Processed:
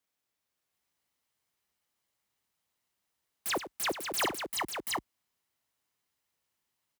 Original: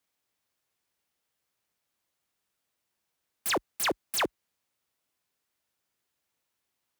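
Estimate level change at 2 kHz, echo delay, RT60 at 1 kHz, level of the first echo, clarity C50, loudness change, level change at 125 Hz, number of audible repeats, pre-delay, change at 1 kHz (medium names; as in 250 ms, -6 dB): -1.0 dB, 94 ms, no reverb, -12.0 dB, no reverb, -3.0 dB, 0.0 dB, 3, no reverb, -0.5 dB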